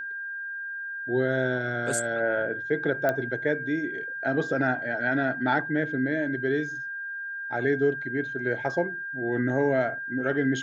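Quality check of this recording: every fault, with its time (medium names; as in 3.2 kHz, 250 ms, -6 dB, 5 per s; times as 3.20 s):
whine 1.6 kHz -32 dBFS
3.09 s: pop -13 dBFS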